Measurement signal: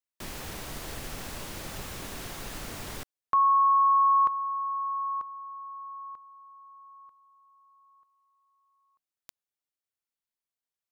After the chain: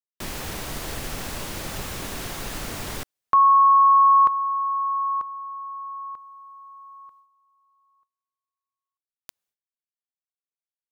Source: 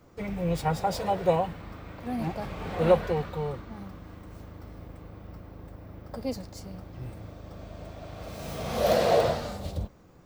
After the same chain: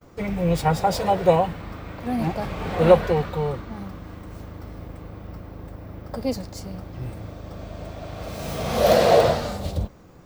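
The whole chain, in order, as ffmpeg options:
ffmpeg -i in.wav -af "agate=range=-29dB:threshold=-56dB:ratio=3:release=241:detection=rms,volume=6.5dB" out.wav

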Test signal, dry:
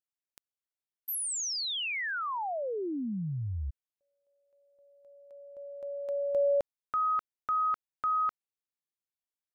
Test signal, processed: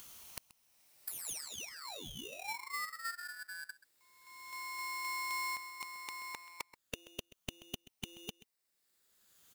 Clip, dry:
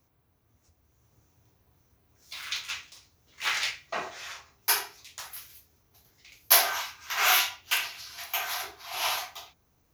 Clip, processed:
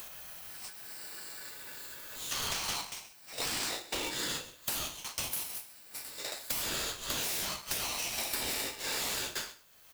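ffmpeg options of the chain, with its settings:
ffmpeg -i in.wav -af "afftfilt=real='re*pow(10,10/40*sin(2*PI*(1.3*log(max(b,1)*sr/1024/100)/log(2)-(-0.41)*(pts-256)/sr)))':imag='im*pow(10,10/40*sin(2*PI*(1.3*log(max(b,1)*sr/1024/100)/log(2)-(-0.41)*(pts-256)/sr)))':win_size=1024:overlap=0.75,tiltshelf=frequency=750:gain=-8.5,acompressor=mode=upward:threshold=-26dB:ratio=2.5:attack=2.4:release=915:knee=2.83:detection=peak,afftfilt=real='re*lt(hypot(re,im),0.2)':imag='im*lt(hypot(re,im),0.2)':win_size=1024:overlap=0.75,acompressor=threshold=-39dB:ratio=20:attack=68:release=26:knee=1:detection=peak,asoftclip=type=tanh:threshold=-24dB,aecho=1:1:131:0.126,aeval=exprs='val(0)*sgn(sin(2*PI*1600*n/s))':channel_layout=same" out.wav

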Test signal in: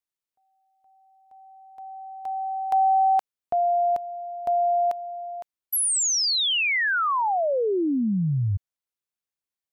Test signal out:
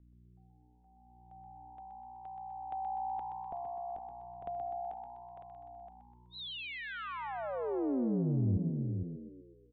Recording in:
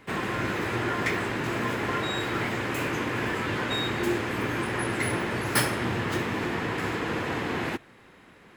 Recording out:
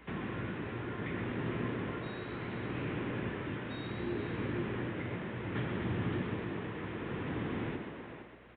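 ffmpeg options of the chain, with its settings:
ffmpeg -i in.wav -filter_complex "[0:a]aresample=8000,aresample=44100,asplit=2[link_01][link_02];[link_02]adelay=460.6,volume=-9dB,highshelf=frequency=4000:gain=-10.4[link_03];[link_01][link_03]amix=inputs=2:normalize=0,aeval=exprs='val(0)+0.00158*(sin(2*PI*60*n/s)+sin(2*PI*2*60*n/s)/2+sin(2*PI*3*60*n/s)/3+sin(2*PI*4*60*n/s)/4+sin(2*PI*5*60*n/s)/5)':channel_layout=same,tremolo=f=0.67:d=0.45,acrossover=split=310[link_04][link_05];[link_05]acompressor=threshold=-52dB:ratio=2:attack=36:release=66:knee=2.83:detection=peak[link_06];[link_04][link_06]amix=inputs=2:normalize=0,asplit=2[link_07][link_08];[link_08]asplit=6[link_09][link_10][link_11][link_12][link_13][link_14];[link_09]adelay=125,afreqshift=61,volume=-7dB[link_15];[link_10]adelay=250,afreqshift=122,volume=-12.7dB[link_16];[link_11]adelay=375,afreqshift=183,volume=-18.4dB[link_17];[link_12]adelay=500,afreqshift=244,volume=-24dB[link_18];[link_13]adelay=625,afreqshift=305,volume=-29.7dB[link_19];[link_14]adelay=750,afreqshift=366,volume=-35.4dB[link_20];[link_15][link_16][link_17][link_18][link_19][link_20]amix=inputs=6:normalize=0[link_21];[link_07][link_21]amix=inputs=2:normalize=0,volume=-3.5dB" out.wav

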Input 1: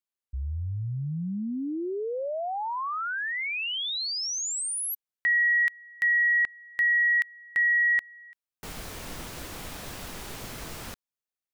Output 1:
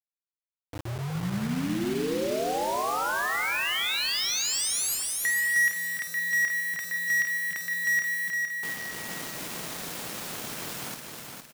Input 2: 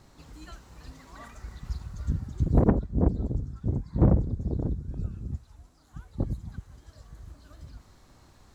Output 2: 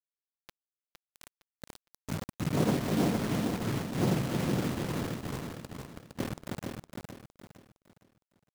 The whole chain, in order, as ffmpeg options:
ffmpeg -i in.wav -filter_complex "[0:a]asoftclip=type=tanh:threshold=-20.5dB,highpass=frequency=130:width=0.5412,highpass=frequency=130:width=1.3066,asplit=2[link_01][link_02];[link_02]aecho=0:1:51|288|311:0.376|0.224|0.562[link_03];[link_01][link_03]amix=inputs=2:normalize=0,acrusher=bits=5:mix=0:aa=0.000001,asplit=2[link_04][link_05];[link_05]aecho=0:1:461|922|1383|1844:0.562|0.191|0.065|0.0221[link_06];[link_04][link_06]amix=inputs=2:normalize=0" out.wav

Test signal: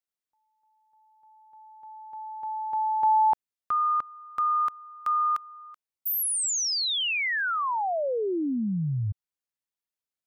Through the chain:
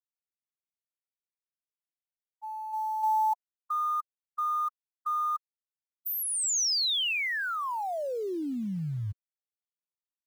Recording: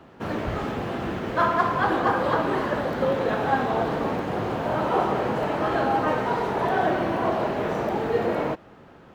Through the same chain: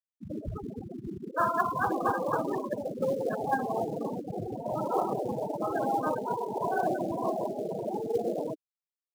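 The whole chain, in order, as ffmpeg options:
ffmpeg -i in.wav -filter_complex "[0:a]afftfilt=real='re*gte(hypot(re,im),0.178)':imag='im*gte(hypot(re,im),0.178)':win_size=1024:overlap=0.75,asplit=2[link_01][link_02];[link_02]acrusher=bits=4:mode=log:mix=0:aa=0.000001,volume=-11.5dB[link_03];[link_01][link_03]amix=inputs=2:normalize=0,adynamicequalizer=threshold=0.0126:dfrequency=2400:dqfactor=0.7:tfrequency=2400:tqfactor=0.7:attack=5:release=100:ratio=0.375:range=3:mode=boostabove:tftype=highshelf,volume=-7dB" out.wav

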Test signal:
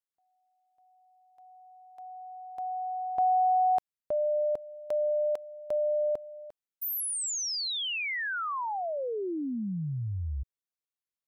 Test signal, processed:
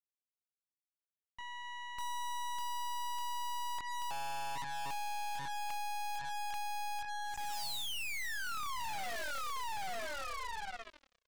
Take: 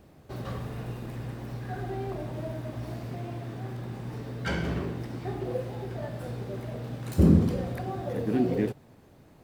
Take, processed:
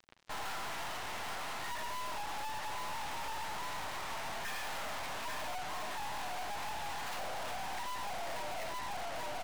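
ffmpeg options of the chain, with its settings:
ffmpeg -i in.wav -filter_complex "[0:a]acontrast=54,asplit=2[link_01][link_02];[link_02]adelay=22,volume=-7dB[link_03];[link_01][link_03]amix=inputs=2:normalize=0,asplit=2[link_04][link_05];[link_05]adelay=835,lowpass=frequency=2600:poles=1,volume=-7dB,asplit=2[link_06][link_07];[link_07]adelay=835,lowpass=frequency=2600:poles=1,volume=0.28,asplit=2[link_08][link_09];[link_09]adelay=835,lowpass=frequency=2600:poles=1,volume=0.28[link_10];[link_04][link_06][link_08][link_10]amix=inputs=4:normalize=0,highpass=frequency=540:width_type=q:width=0.5412,highpass=frequency=540:width_type=q:width=1.307,lowpass=frequency=3600:width_type=q:width=0.5176,lowpass=frequency=3600:width_type=q:width=0.7071,lowpass=frequency=3600:width_type=q:width=1.932,afreqshift=230,acompressor=threshold=-33dB:ratio=12:attack=18:release=233:knee=1:detection=rms,aeval=exprs='(tanh(158*val(0)+0.75)-tanh(0.75))/158':channel_layout=same,acrusher=bits=7:mix=0:aa=0.5,volume=8dB" out.wav

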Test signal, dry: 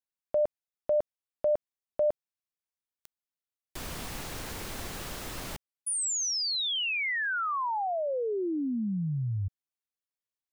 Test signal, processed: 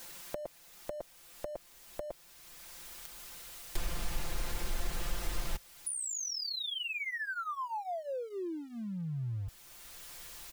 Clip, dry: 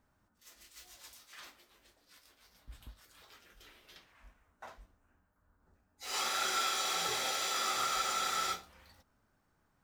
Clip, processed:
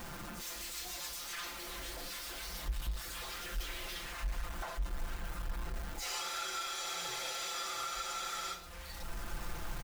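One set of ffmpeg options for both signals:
ffmpeg -i in.wav -af "aeval=exprs='val(0)+0.5*0.00562*sgn(val(0))':channel_layout=same,aecho=1:1:5.8:0.73,acompressor=threshold=-43dB:ratio=4:attack=16:release=622:knee=6:detection=rms,asubboost=boost=4.5:cutoff=82,volume=5dB" out.wav

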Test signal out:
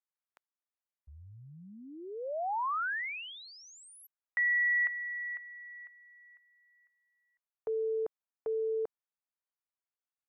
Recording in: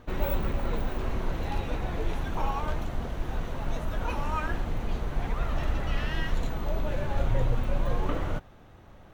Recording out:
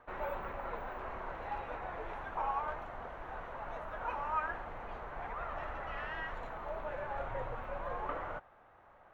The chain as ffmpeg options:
ffmpeg -i in.wav -filter_complex "[0:a]acrossover=split=580 2000:gain=0.1 1 0.0631[link_01][link_02][link_03];[link_01][link_02][link_03]amix=inputs=3:normalize=0" out.wav

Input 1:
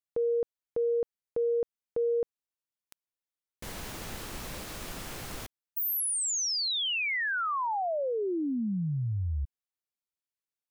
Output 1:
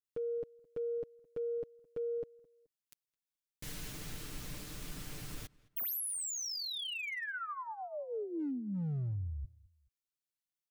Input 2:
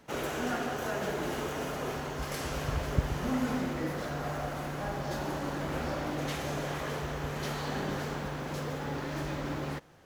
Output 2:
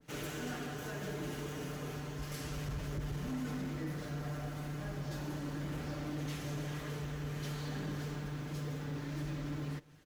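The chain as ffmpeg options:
ffmpeg -i in.wav -filter_complex "[0:a]equalizer=frequency=780:width_type=o:width=2:gain=-11.5,aecho=1:1:6.7:0.54,acompressor=threshold=-35dB:ratio=2:attack=14:release=30:knee=1:detection=peak,asoftclip=type=hard:threshold=-30.5dB,asplit=2[link_01][link_02];[link_02]adelay=214,lowpass=frequency=2300:poles=1,volume=-23dB,asplit=2[link_03][link_04];[link_04]adelay=214,lowpass=frequency=2300:poles=1,volume=0.36[link_05];[link_01][link_03][link_05]amix=inputs=3:normalize=0,adynamicequalizer=threshold=0.00224:dfrequency=1600:dqfactor=0.7:tfrequency=1600:tqfactor=0.7:attack=5:release=100:ratio=0.375:range=2:mode=cutabove:tftype=highshelf,volume=-2.5dB" out.wav

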